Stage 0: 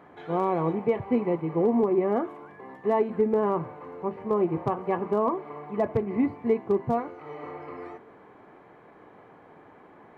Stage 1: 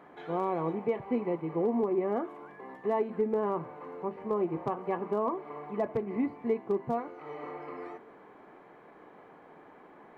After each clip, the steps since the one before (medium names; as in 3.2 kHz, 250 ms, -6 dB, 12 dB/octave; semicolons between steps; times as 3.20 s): peaking EQ 93 Hz -12 dB 0.89 oct; in parallel at -2 dB: compression, threshold -34 dBFS, peak gain reduction 14.5 dB; on the sum: trim -6.5 dB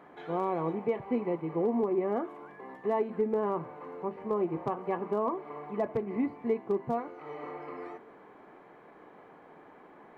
no audible change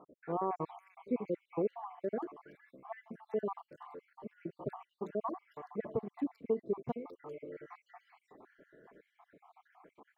random holes in the spectrogram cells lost 68%; bands offset in time lows, highs 390 ms, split 2.5 kHz; trim -2.5 dB